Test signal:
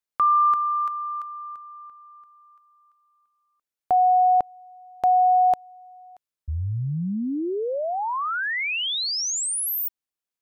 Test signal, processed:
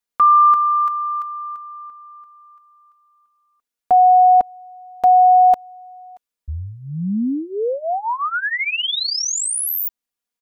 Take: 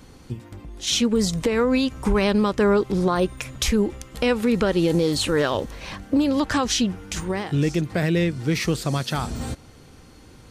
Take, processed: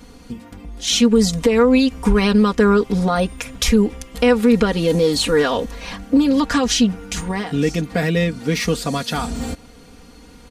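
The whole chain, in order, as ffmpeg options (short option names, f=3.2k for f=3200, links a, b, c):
-af "aecho=1:1:4.2:0.8,volume=2dB"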